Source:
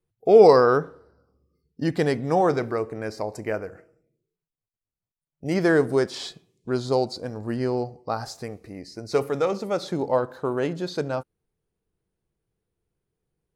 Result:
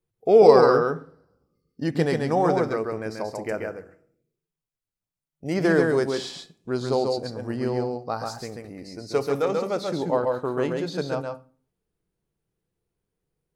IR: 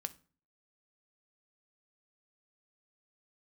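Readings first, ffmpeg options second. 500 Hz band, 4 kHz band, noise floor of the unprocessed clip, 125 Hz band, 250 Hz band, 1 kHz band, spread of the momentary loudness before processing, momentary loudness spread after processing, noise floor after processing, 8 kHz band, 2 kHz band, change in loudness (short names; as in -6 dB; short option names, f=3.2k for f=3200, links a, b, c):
0.0 dB, 0.0 dB, under -85 dBFS, 0.0 dB, 0.0 dB, 0.0 dB, 19 LU, 18 LU, under -85 dBFS, 0.0 dB, 0.0 dB, 0.0 dB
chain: -filter_complex "[0:a]equalizer=f=74:w=1.2:g=-3,asplit=2[a][b];[1:a]atrim=start_sample=2205,adelay=136[c];[b][c]afir=irnorm=-1:irlink=0,volume=-1.5dB[d];[a][d]amix=inputs=2:normalize=0,volume=-1.5dB"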